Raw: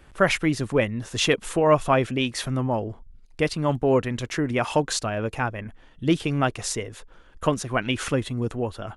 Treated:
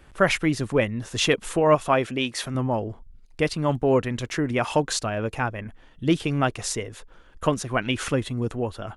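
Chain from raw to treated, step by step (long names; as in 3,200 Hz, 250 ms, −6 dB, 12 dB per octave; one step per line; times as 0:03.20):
0:01.75–0:02.55: low-shelf EQ 130 Hz −10.5 dB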